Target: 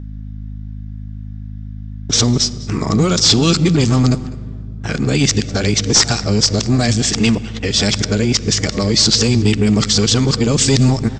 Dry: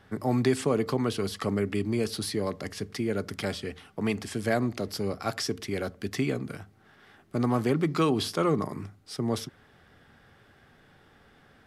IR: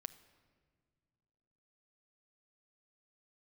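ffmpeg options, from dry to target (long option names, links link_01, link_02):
-filter_complex "[0:a]areverse,aemphasis=mode=production:type=75kf,agate=range=-28dB:threshold=-43dB:ratio=16:detection=peak,acrossover=split=220|3000[link_01][link_02][link_03];[link_02]acompressor=threshold=-38dB:ratio=6[link_04];[link_01][link_04][link_03]amix=inputs=3:normalize=0,aeval=exprs='val(0)+0.00501*(sin(2*PI*50*n/s)+sin(2*PI*2*50*n/s)/2+sin(2*PI*3*50*n/s)/3+sin(2*PI*4*50*n/s)/4+sin(2*PI*5*50*n/s)/5)':channel_layout=same,aresample=16000,aeval=exprs='0.266*sin(PI/2*2.82*val(0)/0.266)':channel_layout=same,aresample=44100,asplit=2[link_05][link_06];[link_06]adelay=209.9,volume=-19dB,highshelf=frequency=4000:gain=-4.72[link_07];[link_05][link_07]amix=inputs=2:normalize=0,asplit=2[link_08][link_09];[1:a]atrim=start_sample=2205,asetrate=29547,aresample=44100[link_10];[link_09][link_10]afir=irnorm=-1:irlink=0,volume=6.5dB[link_11];[link_08][link_11]amix=inputs=2:normalize=0,asetrate=45938,aresample=44100,volume=-2.5dB"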